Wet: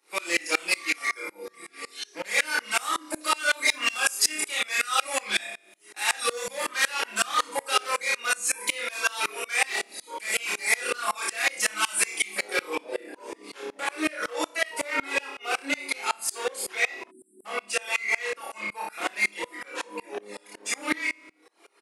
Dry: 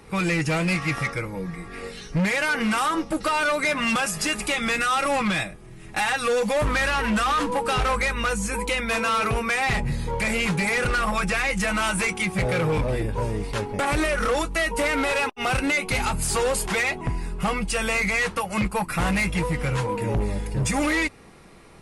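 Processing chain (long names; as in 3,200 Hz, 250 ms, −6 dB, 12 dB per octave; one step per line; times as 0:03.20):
Butterworth high-pass 270 Hz 48 dB per octave
tilt shelving filter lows −4.5 dB, about 1,100 Hz
double-tracking delay 19 ms −10.5 dB
flutter between parallel walls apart 5 metres, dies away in 0.69 s
reverb reduction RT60 0.77 s
rectangular room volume 2,000 cubic metres, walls furnished, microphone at 0.92 metres
0:17.11–0:17.45: time-frequency box erased 400–7,500 Hz
high-shelf EQ 4,500 Hz +7.5 dB, from 0:12.75 −4 dB
tremolo with a ramp in dB swelling 5.4 Hz, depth 27 dB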